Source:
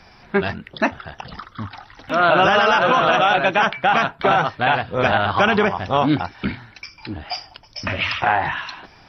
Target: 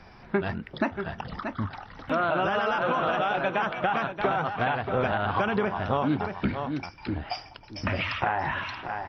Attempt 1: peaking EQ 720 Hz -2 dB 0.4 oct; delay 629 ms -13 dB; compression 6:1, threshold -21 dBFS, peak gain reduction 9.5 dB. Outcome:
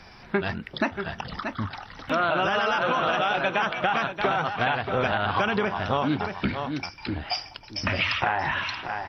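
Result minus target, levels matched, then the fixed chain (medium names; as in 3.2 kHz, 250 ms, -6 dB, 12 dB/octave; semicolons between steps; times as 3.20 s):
4 kHz band +5.0 dB
peaking EQ 720 Hz -2 dB 0.4 oct; delay 629 ms -13 dB; compression 6:1, threshold -21 dBFS, peak gain reduction 9.5 dB; treble shelf 2.4 kHz -11 dB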